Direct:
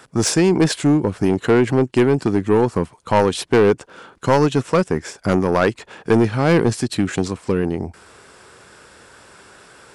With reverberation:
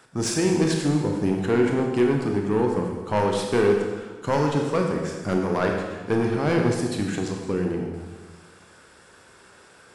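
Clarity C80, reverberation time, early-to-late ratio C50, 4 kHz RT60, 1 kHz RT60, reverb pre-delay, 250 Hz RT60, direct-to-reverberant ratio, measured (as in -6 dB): 5.0 dB, 1.3 s, 3.0 dB, 1.3 s, 1.3 s, 21 ms, 1.5 s, 0.5 dB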